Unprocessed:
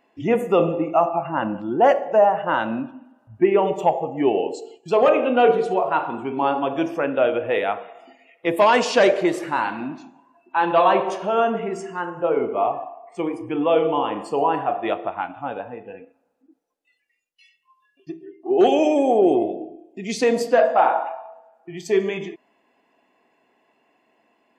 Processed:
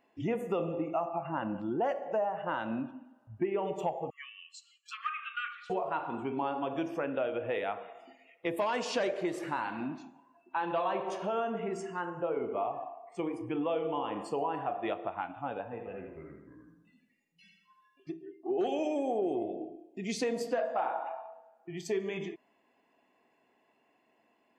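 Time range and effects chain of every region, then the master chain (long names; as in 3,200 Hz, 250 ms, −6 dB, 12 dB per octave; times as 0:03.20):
0:04.10–0:05.70: treble cut that deepens with the level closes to 2,700 Hz, closed at −13.5 dBFS + linear-phase brick-wall high-pass 1,100 Hz
0:15.63–0:18.11: delay with pitch and tempo change per echo 225 ms, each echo −4 semitones, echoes 2, each echo −6 dB + repeating echo 82 ms, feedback 45%, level −5.5 dB
whole clip: downward compressor 3 to 1, threshold −24 dBFS; parametric band 89 Hz +3.5 dB 1.8 octaves; level −7 dB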